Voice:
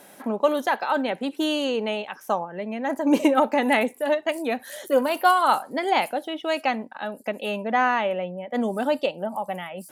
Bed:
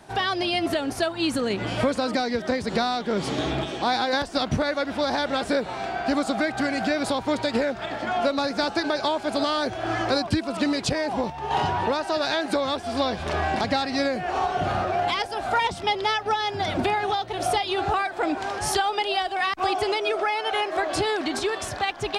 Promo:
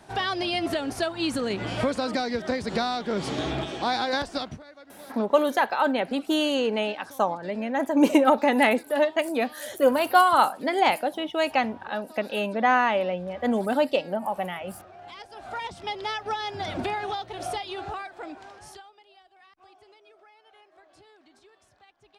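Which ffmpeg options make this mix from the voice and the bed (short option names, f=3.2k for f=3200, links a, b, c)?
-filter_complex "[0:a]adelay=4900,volume=0.5dB[a];[1:a]volume=15dB,afade=t=out:st=4.28:d=0.31:silence=0.0944061,afade=t=in:st=14.98:d=1.34:silence=0.133352,afade=t=out:st=17.05:d=1.89:silence=0.0501187[b];[a][b]amix=inputs=2:normalize=0"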